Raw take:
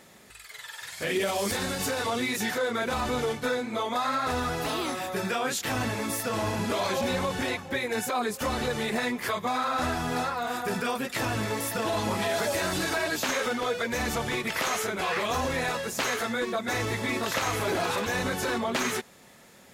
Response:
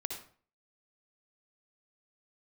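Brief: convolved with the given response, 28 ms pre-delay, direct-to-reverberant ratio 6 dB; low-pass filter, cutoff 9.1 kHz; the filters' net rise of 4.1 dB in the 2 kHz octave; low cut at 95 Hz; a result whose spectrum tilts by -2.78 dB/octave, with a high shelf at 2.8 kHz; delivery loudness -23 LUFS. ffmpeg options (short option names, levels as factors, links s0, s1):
-filter_complex "[0:a]highpass=95,lowpass=9100,equalizer=f=2000:t=o:g=8.5,highshelf=f=2800:g=-9,asplit=2[s0][s1];[1:a]atrim=start_sample=2205,adelay=28[s2];[s1][s2]afir=irnorm=-1:irlink=0,volume=0.473[s3];[s0][s3]amix=inputs=2:normalize=0,volume=1.5"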